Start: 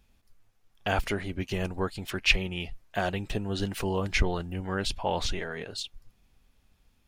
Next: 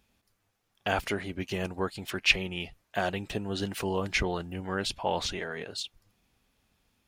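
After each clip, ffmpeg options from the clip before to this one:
-af "highpass=f=140:p=1"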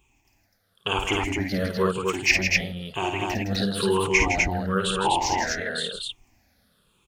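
-af "afftfilt=real='re*pow(10,19/40*sin(2*PI*(0.68*log(max(b,1)*sr/1024/100)/log(2)-(-1)*(pts-256)/sr)))':imag='im*pow(10,19/40*sin(2*PI*(0.68*log(max(b,1)*sr/1024/100)/log(2)-(-1)*(pts-256)/sr)))':win_size=1024:overlap=0.75,aecho=1:1:52.48|160.3|250.7:0.562|0.447|0.794"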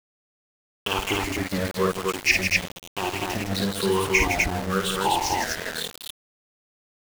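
-af "aeval=exprs='val(0)*gte(abs(val(0)),0.0447)':c=same"

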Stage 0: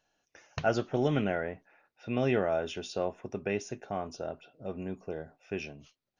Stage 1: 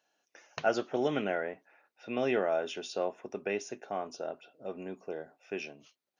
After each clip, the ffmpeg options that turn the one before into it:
-af "highpass=280"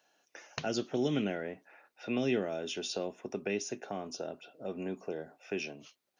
-filter_complex "[0:a]acrossover=split=330|3000[s0][s1][s2];[s1]acompressor=threshold=0.00562:ratio=6[s3];[s0][s3][s2]amix=inputs=3:normalize=0,volume=1.88"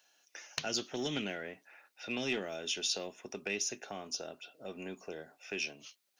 -af "aeval=exprs='0.119*(cos(1*acos(clip(val(0)/0.119,-1,1)))-cos(1*PI/2))+0.0376*(cos(2*acos(clip(val(0)/0.119,-1,1)))-cos(2*PI/2))+0.00944*(cos(4*acos(clip(val(0)/0.119,-1,1)))-cos(4*PI/2))+0.00119*(cos(8*acos(clip(val(0)/0.119,-1,1)))-cos(8*PI/2))':c=same,tiltshelf=f=1500:g=-7"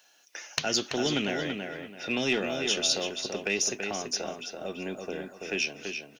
-filter_complex "[0:a]asplit=2[s0][s1];[s1]adelay=333,lowpass=f=3500:p=1,volume=0.562,asplit=2[s2][s3];[s3]adelay=333,lowpass=f=3500:p=1,volume=0.3,asplit=2[s4][s5];[s5]adelay=333,lowpass=f=3500:p=1,volume=0.3,asplit=2[s6][s7];[s7]adelay=333,lowpass=f=3500:p=1,volume=0.3[s8];[s0][s2][s4][s6][s8]amix=inputs=5:normalize=0,volume=2.37"

